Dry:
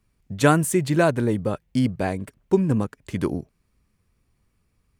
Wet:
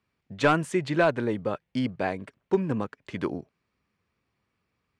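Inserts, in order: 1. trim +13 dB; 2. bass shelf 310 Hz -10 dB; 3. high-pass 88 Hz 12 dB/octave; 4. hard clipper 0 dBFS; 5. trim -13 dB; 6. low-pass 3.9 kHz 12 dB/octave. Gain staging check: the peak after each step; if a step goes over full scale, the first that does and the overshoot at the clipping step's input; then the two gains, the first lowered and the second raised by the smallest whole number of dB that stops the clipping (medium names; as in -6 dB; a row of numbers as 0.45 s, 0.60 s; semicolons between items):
+10.0 dBFS, +6.5 dBFS, +8.0 dBFS, 0.0 dBFS, -13.0 dBFS, -12.5 dBFS; step 1, 8.0 dB; step 1 +5 dB, step 5 -5 dB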